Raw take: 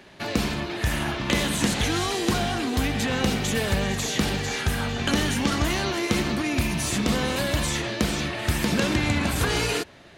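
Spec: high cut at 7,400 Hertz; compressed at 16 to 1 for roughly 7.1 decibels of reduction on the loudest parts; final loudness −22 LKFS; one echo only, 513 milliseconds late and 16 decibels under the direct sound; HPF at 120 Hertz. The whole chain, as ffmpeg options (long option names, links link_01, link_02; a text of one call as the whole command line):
ffmpeg -i in.wav -af "highpass=120,lowpass=7400,acompressor=threshold=-25dB:ratio=16,aecho=1:1:513:0.158,volume=7dB" out.wav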